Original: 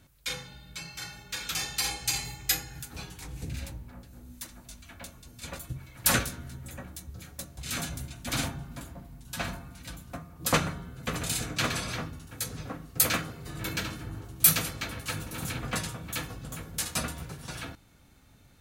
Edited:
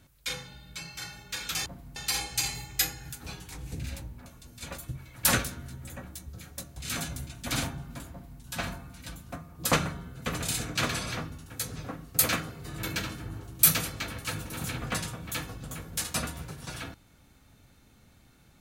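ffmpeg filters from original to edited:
-filter_complex "[0:a]asplit=4[a][b][c][d];[a]atrim=end=1.662[e];[b]atrim=start=8.918:end=9.222[f];[c]atrim=start=1.658:end=3.962[g];[d]atrim=start=5.068[h];[e][f]acrossfade=d=0.004:c1=hsin:c2=hsin[i];[i][g]acrossfade=d=0.004:c1=hsin:c2=hsin[j];[j][h]acrossfade=d=0.004:c1=hsin:c2=hsin"

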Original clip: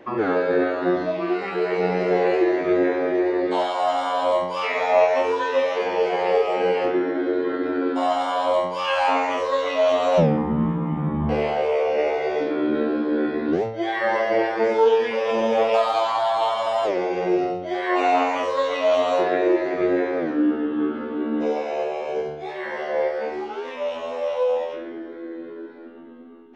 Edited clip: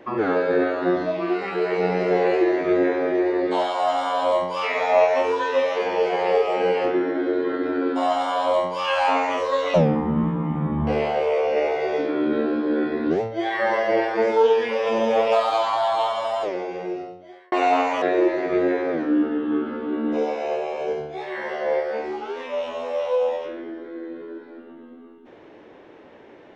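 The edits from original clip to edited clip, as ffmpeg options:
-filter_complex "[0:a]asplit=4[a][b][c][d];[a]atrim=end=9.742[e];[b]atrim=start=10.158:end=17.94,asetpts=PTS-STARTPTS,afade=t=out:st=6.182:d=1.6[f];[c]atrim=start=17.94:end=18.442,asetpts=PTS-STARTPTS,afade=t=in:d=0.004:c=hsin[g];[d]atrim=start=19.298[h];[f][g]concat=n=2:v=0:a=1[i];[e][i]acrossfade=d=0.004:c1=hsin:c2=hsin[j];[j][h]acrossfade=d=0.004:c1=hsin:c2=hsin"

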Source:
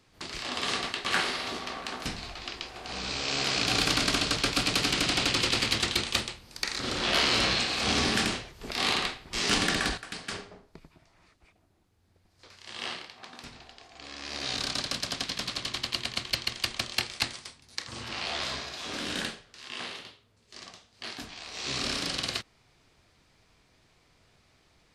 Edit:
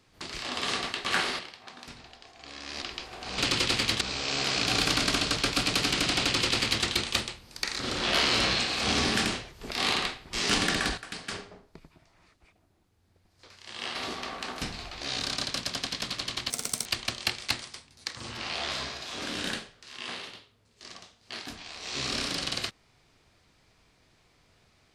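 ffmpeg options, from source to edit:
-filter_complex "[0:a]asplit=9[a][b][c][d][e][f][g][h][i];[a]atrim=end=1.392[j];[b]atrim=start=12.948:end=14.382[k];[c]atrim=start=2.448:end=3.012[l];[d]atrim=start=5.208:end=5.842[m];[e]atrim=start=3.008:end=12.952[n];[f]atrim=start=1.388:end=2.452[o];[g]atrim=start=14.378:end=15.874[p];[h]atrim=start=15.87:end=16.57,asetpts=PTS-STARTPTS,asetrate=86877,aresample=44100,atrim=end_sample=15670,asetpts=PTS-STARTPTS[q];[i]atrim=start=16.566[r];[j][k]acrossfade=d=0.004:c1=hsin:c2=hsin[s];[s][l]acrossfade=d=0.004:c1=hsin:c2=hsin[t];[t][m]acrossfade=d=0.004:c1=hsin:c2=hsin[u];[u][n]acrossfade=d=0.004:c1=hsin:c2=hsin[v];[v][o]acrossfade=d=0.004:c1=hsin:c2=hsin[w];[w][p]acrossfade=d=0.004:c1=hsin:c2=hsin[x];[x][q]acrossfade=d=0.004:c1=hsin:c2=hsin[y];[y][r]acrossfade=d=0.004:c1=hsin:c2=hsin"

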